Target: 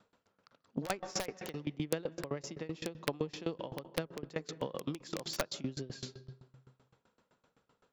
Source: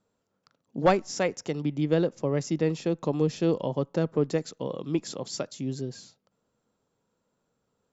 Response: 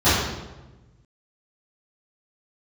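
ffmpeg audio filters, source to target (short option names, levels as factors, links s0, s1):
-filter_complex "[0:a]adynamicsmooth=sensitivity=1.5:basefreq=3800,asplit=2[s0][s1];[1:a]atrim=start_sample=2205,lowpass=5100,adelay=128[s2];[s1][s2]afir=irnorm=-1:irlink=0,volume=0.00891[s3];[s0][s3]amix=inputs=2:normalize=0,acompressor=threshold=0.0141:ratio=10,tiltshelf=f=910:g=-6,aeval=exprs='(mod(33.5*val(0)+1,2)-1)/33.5':c=same,aeval=exprs='val(0)*pow(10,-23*if(lt(mod(7.8*n/s,1),2*abs(7.8)/1000),1-mod(7.8*n/s,1)/(2*abs(7.8)/1000),(mod(7.8*n/s,1)-2*abs(7.8)/1000)/(1-2*abs(7.8)/1000))/20)':c=same,volume=4.73"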